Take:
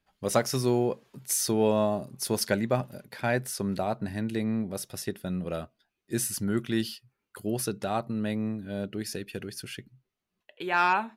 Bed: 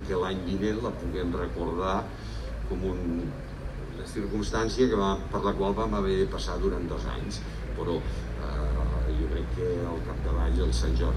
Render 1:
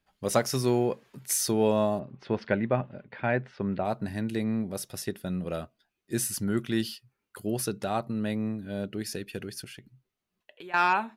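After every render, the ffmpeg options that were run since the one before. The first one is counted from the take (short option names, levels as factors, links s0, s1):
-filter_complex "[0:a]asettb=1/sr,asplit=3[s0][s1][s2];[s0]atrim=end=0.644[s3];[s1]atrim=start=0.64:end=1.38,asetpts=PTS-STARTPTS,afade=t=in:d=0.004:c=qsin,afade=t=out:st=0.736:d=0.004:c=qsin,equalizer=f=1900:t=o:w=1.1:g=4.5[s4];[s2]atrim=start=1.376[s5];[s3][s4]acrossfade=d=0.004:c1=hsin:c2=qsin[s6];[s6][s5]acrossfade=d=0.004:c1=qsin:c2=hsin,asettb=1/sr,asplit=3[s7][s8][s9];[s7]atrim=end=1.994[s10];[s8]atrim=start=1.99:end=3.85,asetpts=PTS-STARTPTS,afade=t=in:d=0.004:c=qsin,afade=t=out:st=1.856:d=0.004:c=qsin,lowpass=f=2900:w=0.5412,lowpass=f=2900:w=1.3066[s11];[s9]atrim=start=3.846[s12];[s10][s11]acrossfade=d=0.004:c1=hsin:c2=qsin[s13];[s13][s12]acrossfade=d=0.004:c1=qsin:c2=hsin,asettb=1/sr,asplit=3[s14][s15][s16];[s14]atrim=end=9.644[s17];[s15]atrim=start=9.64:end=10.74,asetpts=PTS-STARTPTS,afade=t=in:d=0.004:c=qsin,afade=t=out:st=1.096:d=0.004:c=qsin,acompressor=threshold=0.00794:ratio=4:attack=3.2:release=140:knee=1:detection=peak[s18];[s16]atrim=start=10.736[s19];[s17][s18]acrossfade=d=0.004:c1=hsin:c2=qsin[s20];[s20][s19]acrossfade=d=0.004:c1=qsin:c2=hsin"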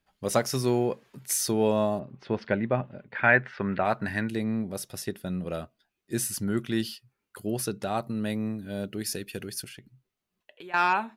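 -filter_complex "[0:a]asettb=1/sr,asplit=3[s0][s1][s2];[s0]atrim=end=3.154[s3];[s1]atrim=start=3.15:end=4.29,asetpts=PTS-STARTPTS,afade=t=in:d=0.004:c=qsin,afade=t=out:st=1.136:d=0.004:c=qsin,equalizer=f=1700:t=o:w=1.6:g=13[s4];[s2]atrim=start=4.286[s5];[s3][s4]acrossfade=d=0.004:c1=hsin:c2=qsin[s6];[s6][s5]acrossfade=d=0.004:c1=qsin:c2=hsin,asettb=1/sr,asplit=3[s7][s8][s9];[s7]atrim=end=7.974[s10];[s8]atrim=start=7.97:end=9.69,asetpts=PTS-STARTPTS,afade=t=in:d=0.004:c=qsin,afade=t=out:st=1.716:d=0.004:c=qsin,highshelf=f=5700:g=8.5[s11];[s9]atrim=start=9.686[s12];[s10][s11]acrossfade=d=0.004:c1=hsin:c2=qsin[s13];[s13][s12]acrossfade=d=0.004:c1=qsin:c2=hsin"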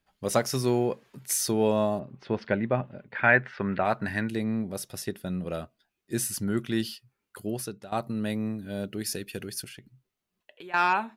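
-filter_complex "[0:a]asplit=2[s0][s1];[s0]atrim=end=7.92,asetpts=PTS-STARTPTS,afade=t=out:st=7.4:d=0.52:silence=0.141254[s2];[s1]atrim=start=7.92,asetpts=PTS-STARTPTS,afade=t=in:d=0.004:c=hsin:silence=0.141254[s3];[s2][s3]concat=n=2:v=0:a=1"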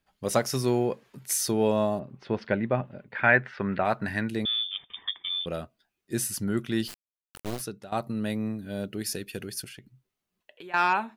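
-filter_complex "[0:a]asettb=1/sr,asplit=3[s0][s1][s2];[s0]atrim=end=4.454[s3];[s1]atrim=start=4.45:end=5.46,asetpts=PTS-STARTPTS,afade=t=in:d=0.004:c=qsin,afade=t=out:st=1.006:d=0.004:c=qsin,lowpass=f=3100:t=q:w=0.5098,lowpass=f=3100:t=q:w=0.6013,lowpass=f=3100:t=q:w=0.9,lowpass=f=3100:t=q:w=2.563,afreqshift=-3700[s4];[s2]atrim=start=5.456[s5];[s3][s4]acrossfade=d=0.004:c1=hsin:c2=qsin[s6];[s6][s5]acrossfade=d=0.004:c1=qsin:c2=hsin,asplit=3[s7][s8][s9];[s7]afade=t=out:st=6.87:d=0.02[s10];[s8]acrusher=bits=3:dc=4:mix=0:aa=0.000001,afade=t=in:st=6.87:d=0.02,afade=t=out:st=7.59:d=0.02[s11];[s9]afade=t=in:st=7.59:d=0.02[s12];[s10][s11][s12]amix=inputs=3:normalize=0"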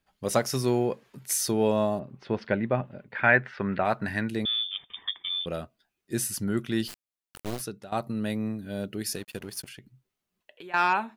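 -filter_complex "[0:a]asettb=1/sr,asplit=3[s0][s1][s2];[s0]atrim=end=9.154[s3];[s1]atrim=start=9.15:end=9.68,asetpts=PTS-STARTPTS,afade=t=in:d=0.004:c=qsin,afade=t=out:st=0.526:d=0.004:c=qsin,aeval=exprs='sgn(val(0))*max(abs(val(0))-0.00398,0)':c=same[s4];[s2]atrim=start=9.676[s5];[s3][s4]acrossfade=d=0.004:c1=hsin:c2=qsin[s6];[s6][s5]acrossfade=d=0.004:c1=qsin:c2=hsin"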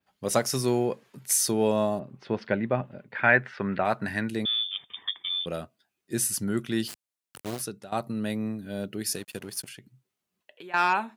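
-af "highpass=92,adynamicequalizer=threshold=0.00562:dfrequency=8800:dqfactor=0.85:tfrequency=8800:tqfactor=0.85:attack=5:release=100:ratio=0.375:range=2.5:mode=boostabove:tftype=bell"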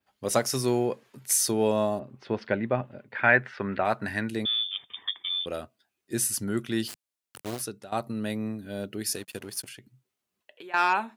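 -af "equalizer=f=170:t=o:w=0.24:g=-11.5"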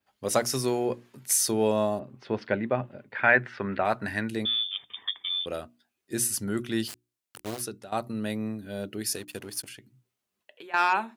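-af "bandreject=f=60:t=h:w=6,bandreject=f=120:t=h:w=6,bandreject=f=180:t=h:w=6,bandreject=f=240:t=h:w=6,bandreject=f=300:t=h:w=6,bandreject=f=360:t=h:w=6"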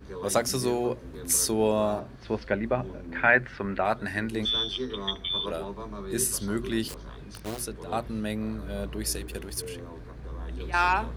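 -filter_complex "[1:a]volume=0.299[s0];[0:a][s0]amix=inputs=2:normalize=0"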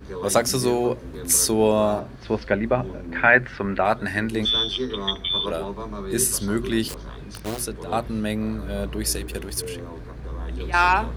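-af "volume=1.88,alimiter=limit=0.708:level=0:latency=1"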